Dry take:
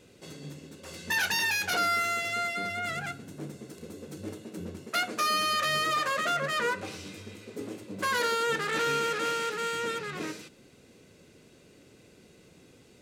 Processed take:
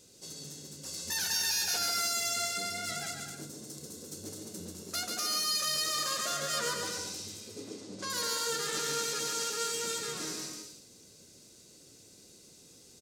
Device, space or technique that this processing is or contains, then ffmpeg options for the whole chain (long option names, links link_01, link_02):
over-bright horn tweeter: -filter_complex "[0:a]highshelf=frequency=3600:width_type=q:width=1.5:gain=13,alimiter=limit=-17dB:level=0:latency=1:release=12,asettb=1/sr,asplit=3[link_01][link_02][link_03];[link_01]atrim=end=7.484[link_04];[link_02]atrim=start=7.48:end=8.1,asetpts=PTS-STARTPTS,afade=type=in:duration=0.004:curve=qsin,afade=type=out:start_time=0.616:duration=0.004:curve=qsin,lowpass=5600[link_05];[link_03]atrim=start=8.096[link_06];[link_04][link_05]acrossfade=duration=0.004:curve1=hsin:curve2=qsin[link_07];[link_07][link_06]acrossfade=duration=0.004:curve1=qsin:curve2=hsin,aecho=1:1:140|238|306.6|354.6|388.2:0.631|0.398|0.251|0.158|0.1,volume=-7dB"